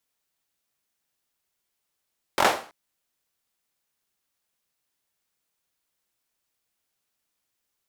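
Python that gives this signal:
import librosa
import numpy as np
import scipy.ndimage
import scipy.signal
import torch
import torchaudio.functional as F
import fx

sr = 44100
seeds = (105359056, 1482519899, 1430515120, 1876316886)

y = fx.drum_clap(sr, seeds[0], length_s=0.33, bursts=4, spacing_ms=22, hz=720.0, decay_s=0.4)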